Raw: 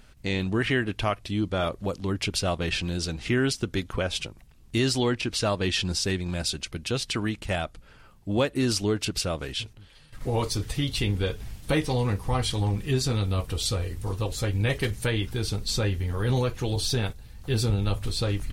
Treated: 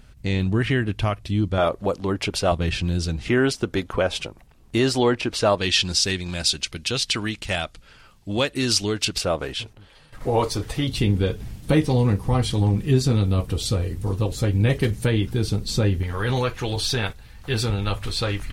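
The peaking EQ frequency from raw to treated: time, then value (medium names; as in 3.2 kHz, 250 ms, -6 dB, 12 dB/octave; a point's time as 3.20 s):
peaking EQ +8.5 dB 2.7 oct
83 Hz
from 1.58 s 700 Hz
from 2.52 s 89 Hz
from 3.28 s 700 Hz
from 5.58 s 4.4 kHz
from 9.18 s 720 Hz
from 10.87 s 200 Hz
from 16.03 s 1.7 kHz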